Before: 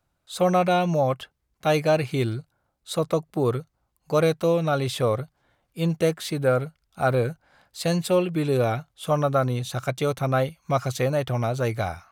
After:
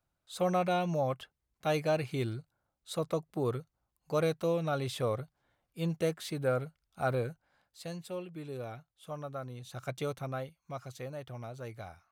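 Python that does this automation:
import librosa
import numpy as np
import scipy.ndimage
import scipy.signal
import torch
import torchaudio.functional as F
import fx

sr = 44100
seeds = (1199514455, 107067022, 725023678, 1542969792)

y = fx.gain(x, sr, db=fx.line((7.12, -9.0), (7.99, -18.5), (9.55, -18.5), (9.97, -9.5), (10.56, -18.0)))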